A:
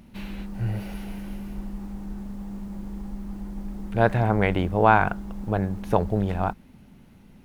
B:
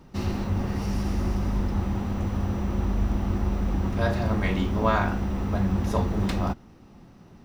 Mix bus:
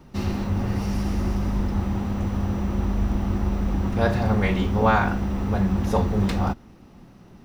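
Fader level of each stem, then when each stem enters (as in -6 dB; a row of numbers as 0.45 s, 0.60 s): -6.0 dB, +1.5 dB; 0.00 s, 0.00 s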